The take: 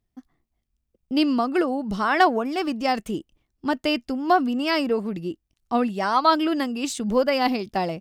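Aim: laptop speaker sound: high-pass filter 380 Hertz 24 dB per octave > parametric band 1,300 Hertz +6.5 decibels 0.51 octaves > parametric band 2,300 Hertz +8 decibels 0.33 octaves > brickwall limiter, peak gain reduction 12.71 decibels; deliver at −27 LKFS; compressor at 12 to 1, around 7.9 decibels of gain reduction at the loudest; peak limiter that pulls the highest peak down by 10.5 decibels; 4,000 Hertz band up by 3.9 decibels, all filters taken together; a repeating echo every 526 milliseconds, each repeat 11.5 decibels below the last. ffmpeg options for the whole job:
ffmpeg -i in.wav -af "equalizer=frequency=4000:width_type=o:gain=4,acompressor=threshold=-20dB:ratio=12,alimiter=limit=-19.5dB:level=0:latency=1,highpass=frequency=380:width=0.5412,highpass=frequency=380:width=1.3066,equalizer=frequency=1300:width_type=o:width=0.51:gain=6.5,equalizer=frequency=2300:width_type=o:width=0.33:gain=8,aecho=1:1:526|1052|1578:0.266|0.0718|0.0194,volume=8dB,alimiter=limit=-17dB:level=0:latency=1" out.wav

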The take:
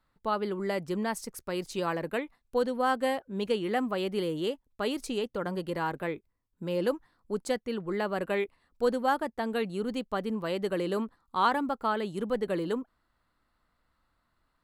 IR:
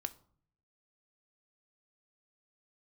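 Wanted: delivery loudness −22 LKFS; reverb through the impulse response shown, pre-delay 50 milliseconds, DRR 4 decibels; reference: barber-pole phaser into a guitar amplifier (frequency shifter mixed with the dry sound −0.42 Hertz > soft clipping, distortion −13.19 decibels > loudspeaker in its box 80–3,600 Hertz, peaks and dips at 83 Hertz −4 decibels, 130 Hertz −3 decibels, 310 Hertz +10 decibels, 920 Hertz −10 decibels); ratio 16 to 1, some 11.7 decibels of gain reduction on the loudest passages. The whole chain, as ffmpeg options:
-filter_complex "[0:a]acompressor=threshold=-33dB:ratio=16,asplit=2[link_01][link_02];[1:a]atrim=start_sample=2205,adelay=50[link_03];[link_02][link_03]afir=irnorm=-1:irlink=0,volume=-3dB[link_04];[link_01][link_04]amix=inputs=2:normalize=0,asplit=2[link_05][link_06];[link_06]afreqshift=-0.42[link_07];[link_05][link_07]amix=inputs=2:normalize=1,asoftclip=threshold=-36dB,highpass=80,equalizer=frequency=83:width_type=q:width=4:gain=-4,equalizer=frequency=130:width_type=q:width=4:gain=-3,equalizer=frequency=310:width_type=q:width=4:gain=10,equalizer=frequency=920:width_type=q:width=4:gain=-10,lowpass=frequency=3600:width=0.5412,lowpass=frequency=3600:width=1.3066,volume=19.5dB"

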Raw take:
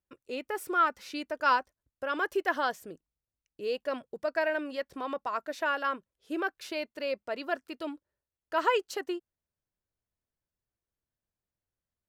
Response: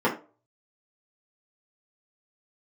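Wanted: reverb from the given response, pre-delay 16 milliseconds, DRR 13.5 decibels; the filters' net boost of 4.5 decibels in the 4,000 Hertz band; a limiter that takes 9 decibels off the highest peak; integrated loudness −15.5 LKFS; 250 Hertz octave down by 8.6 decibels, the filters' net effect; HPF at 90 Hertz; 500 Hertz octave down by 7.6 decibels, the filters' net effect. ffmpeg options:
-filter_complex "[0:a]highpass=90,equalizer=frequency=250:width_type=o:gain=-8,equalizer=frequency=500:width_type=o:gain=-8,equalizer=frequency=4000:width_type=o:gain=6.5,alimiter=limit=-22.5dB:level=0:latency=1,asplit=2[link_01][link_02];[1:a]atrim=start_sample=2205,adelay=16[link_03];[link_02][link_03]afir=irnorm=-1:irlink=0,volume=-29dB[link_04];[link_01][link_04]amix=inputs=2:normalize=0,volume=20.5dB"

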